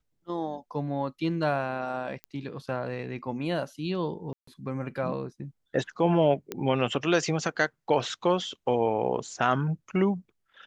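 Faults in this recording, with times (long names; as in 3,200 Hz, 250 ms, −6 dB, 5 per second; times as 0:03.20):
0:02.24: click −23 dBFS
0:04.33–0:04.47: drop-out 144 ms
0:06.52: click −17 dBFS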